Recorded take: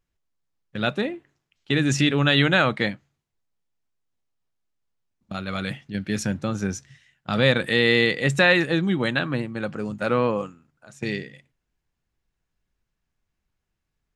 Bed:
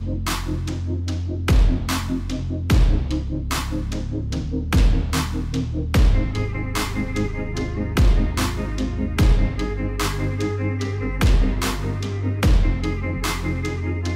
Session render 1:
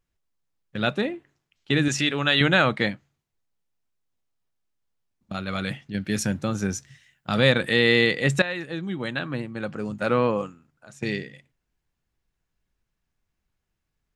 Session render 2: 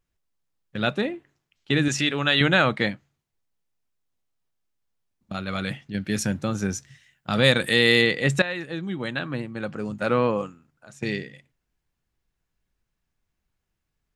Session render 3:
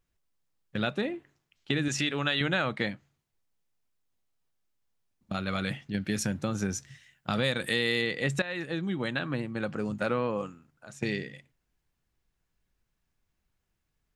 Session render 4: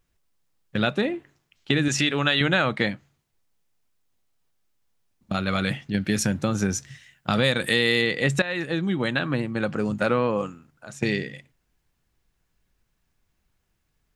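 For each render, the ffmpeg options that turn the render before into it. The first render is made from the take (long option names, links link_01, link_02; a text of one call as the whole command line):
ffmpeg -i in.wav -filter_complex "[0:a]asettb=1/sr,asplit=3[link_01][link_02][link_03];[link_01]atrim=end=1.884[link_04];[link_02]atrim=start=1.88:end=2.41,asetpts=PTS-STARTPTS,afade=type=in:duration=0.004:curve=qsin,afade=type=out:start_time=0.526:duration=0.004:curve=qsin,lowshelf=frequency=380:gain=-9.5[link_05];[link_03]atrim=start=2.406[link_06];[link_04][link_05]acrossfade=duration=0.004:curve1=hsin:curve2=qsin[link_07];[link_07][link_06]acrossfade=duration=0.004:curve1=qsin:curve2=hsin,asettb=1/sr,asplit=3[link_08][link_09][link_10];[link_08]atrim=end=6.054[link_11];[link_09]atrim=start=6.05:end=7.5,asetpts=PTS-STARTPTS,afade=type=in:duration=0.004:curve=qsin,afade=type=out:start_time=1.446:duration=0.004:curve=qsin,highshelf=frequency=10000:gain=10.5[link_12];[link_10]atrim=start=7.496[link_13];[link_11][link_12]acrossfade=duration=0.004:curve1=hsin:curve2=qsin[link_14];[link_14][link_13]acrossfade=duration=0.004:curve1=qsin:curve2=hsin,asplit=2[link_15][link_16];[link_15]atrim=end=8.42,asetpts=PTS-STARTPTS,afade=type=out:start_time=8.416:duration=0.004:curve=hsin:silence=0.177828[link_17];[link_16]atrim=start=8.42,asetpts=PTS-STARTPTS,afade=type=in:duration=1.65:silence=0.177828[link_18];[link_17][link_18]concat=n=2:v=0:a=1" out.wav
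ffmpeg -i in.wav -filter_complex "[0:a]asplit=3[link_01][link_02][link_03];[link_01]afade=type=out:start_time=7.43:duration=0.02[link_04];[link_02]aemphasis=mode=production:type=50fm,afade=type=in:start_time=7.43:duration=0.02,afade=type=out:start_time=8.01:duration=0.02[link_05];[link_03]afade=type=in:start_time=8.01:duration=0.02[link_06];[link_04][link_05][link_06]amix=inputs=3:normalize=0" out.wav
ffmpeg -i in.wav -af "acompressor=threshold=-27dB:ratio=3" out.wav
ffmpeg -i in.wav -af "volume=6.5dB" out.wav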